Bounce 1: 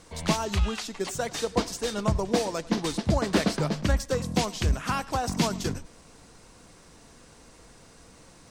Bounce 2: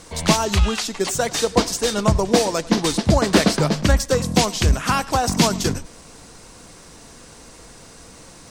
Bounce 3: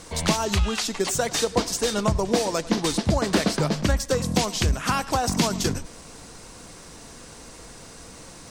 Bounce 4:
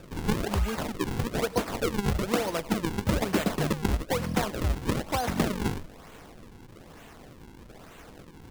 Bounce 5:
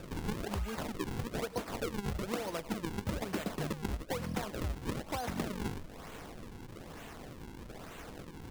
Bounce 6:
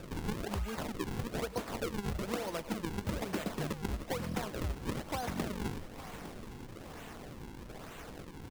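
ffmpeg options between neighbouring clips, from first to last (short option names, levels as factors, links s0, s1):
-af "bass=f=250:g=-1,treble=f=4000:g=3,volume=2.66"
-af "acompressor=threshold=0.0794:ratio=2"
-af "acrusher=samples=41:mix=1:aa=0.000001:lfo=1:lforange=65.6:lforate=1.1,volume=0.596"
-af "acompressor=threshold=0.0112:ratio=2.5,volume=1.12"
-af "aecho=1:1:857|1714|2571|3428:0.188|0.0848|0.0381|0.0172"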